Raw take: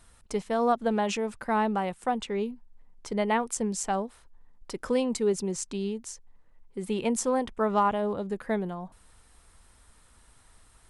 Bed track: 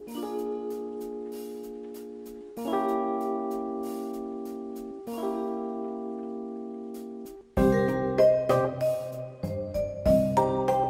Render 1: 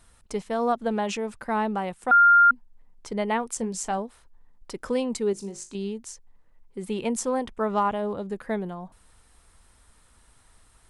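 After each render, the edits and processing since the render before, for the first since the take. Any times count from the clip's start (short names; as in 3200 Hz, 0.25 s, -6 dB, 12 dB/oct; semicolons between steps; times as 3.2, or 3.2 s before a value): 2.11–2.51 bleep 1400 Hz -12 dBFS; 3.57–3.98 doubler 22 ms -11.5 dB; 5.33–5.75 resonator 50 Hz, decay 0.29 s, mix 80%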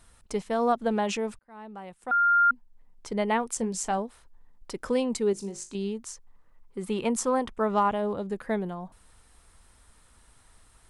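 1.39–3.19 fade in linear; 5.94–7.52 bell 1200 Hz +6.5 dB 0.56 oct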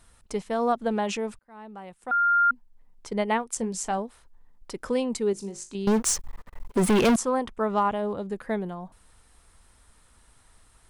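3.1–3.55 transient shaper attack +3 dB, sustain -7 dB; 5.87–7.16 sample leveller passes 5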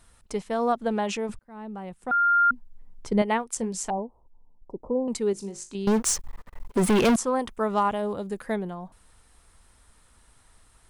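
1.29–3.22 low shelf 380 Hz +10 dB; 3.9–5.08 elliptic low-pass 960 Hz; 7.39–8.56 high shelf 6000 Hz +10.5 dB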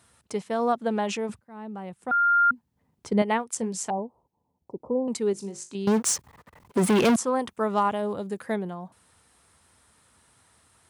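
HPF 83 Hz 24 dB/oct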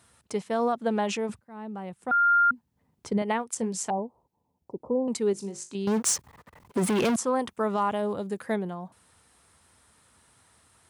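limiter -17 dBFS, peak gain reduction 8 dB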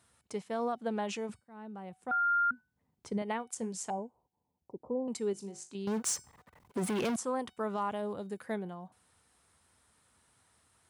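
resonator 750 Hz, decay 0.36 s, mix 60%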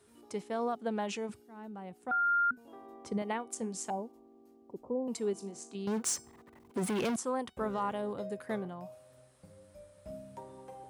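add bed track -24 dB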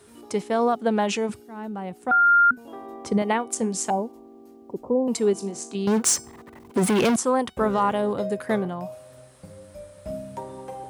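gain +12 dB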